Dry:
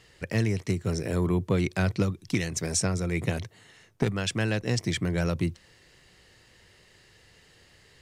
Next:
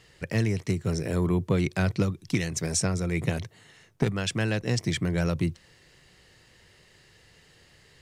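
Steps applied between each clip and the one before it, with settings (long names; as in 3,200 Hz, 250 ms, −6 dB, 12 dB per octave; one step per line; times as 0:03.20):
parametric band 150 Hz +4.5 dB 0.28 octaves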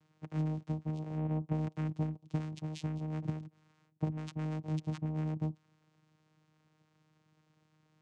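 channel vocoder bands 4, saw 155 Hz
level −8 dB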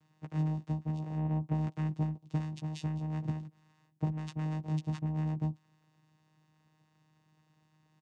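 double-tracking delay 14 ms −5.5 dB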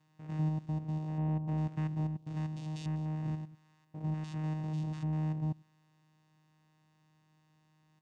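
spectrum averaged block by block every 100 ms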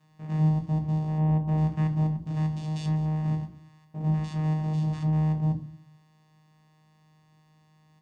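rectangular room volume 300 cubic metres, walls furnished, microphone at 1.4 metres
level +4 dB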